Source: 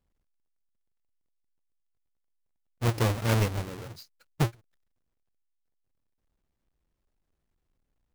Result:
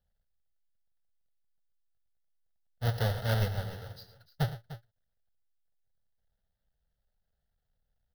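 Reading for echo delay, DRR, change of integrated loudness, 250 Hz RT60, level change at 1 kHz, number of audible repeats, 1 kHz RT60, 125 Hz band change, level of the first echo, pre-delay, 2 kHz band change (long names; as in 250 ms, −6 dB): 70 ms, no reverb audible, −4.0 dB, no reverb audible, −5.0 dB, 3, no reverb audible, −3.0 dB, −16.0 dB, no reverb audible, −3.5 dB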